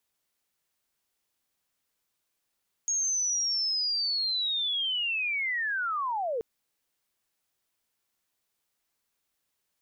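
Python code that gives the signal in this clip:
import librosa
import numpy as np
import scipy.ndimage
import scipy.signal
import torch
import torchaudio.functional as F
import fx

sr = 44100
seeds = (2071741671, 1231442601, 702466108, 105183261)

y = fx.chirp(sr, length_s=3.53, from_hz=6600.0, to_hz=430.0, law='linear', from_db=-25.0, to_db=-27.5)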